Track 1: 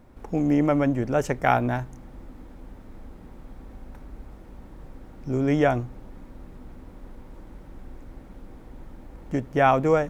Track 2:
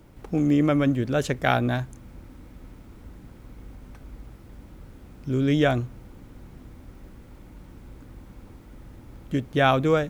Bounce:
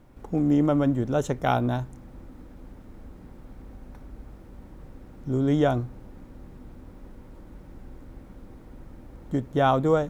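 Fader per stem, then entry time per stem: -3.5, -9.0 dB; 0.00, 0.00 s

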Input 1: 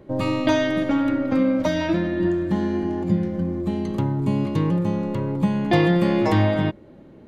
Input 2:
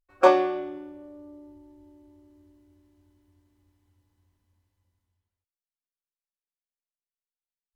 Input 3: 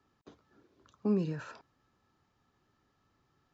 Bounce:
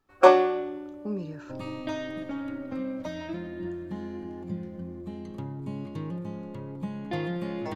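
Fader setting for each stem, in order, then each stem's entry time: -13.5, +1.5, -3.5 dB; 1.40, 0.00, 0.00 s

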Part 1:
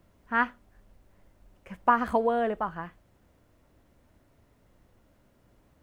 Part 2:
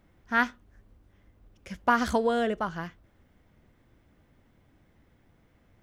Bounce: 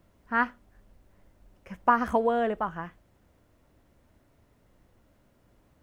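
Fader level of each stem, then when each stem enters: -0.5, -17.0 dB; 0.00, 0.00 s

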